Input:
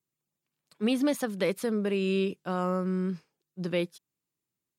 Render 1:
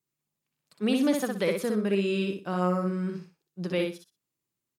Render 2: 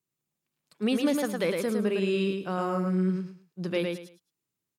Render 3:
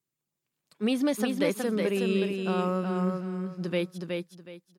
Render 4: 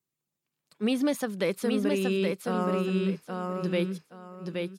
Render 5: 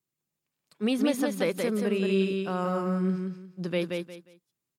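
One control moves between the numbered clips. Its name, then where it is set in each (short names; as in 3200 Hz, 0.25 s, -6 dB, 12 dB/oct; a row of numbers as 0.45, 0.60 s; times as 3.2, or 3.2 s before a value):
feedback echo, time: 61, 108, 369, 823, 178 ms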